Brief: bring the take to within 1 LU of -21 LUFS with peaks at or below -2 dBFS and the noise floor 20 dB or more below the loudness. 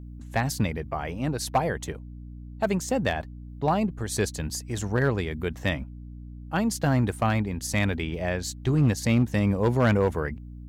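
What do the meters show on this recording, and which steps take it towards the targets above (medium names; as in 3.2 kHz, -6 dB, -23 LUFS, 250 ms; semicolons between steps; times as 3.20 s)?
clipped samples 0.5%; clipping level -15.0 dBFS; hum 60 Hz; highest harmonic 300 Hz; hum level -38 dBFS; loudness -26.5 LUFS; peak level -15.0 dBFS; loudness target -21.0 LUFS
-> clip repair -15 dBFS; de-hum 60 Hz, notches 5; trim +5.5 dB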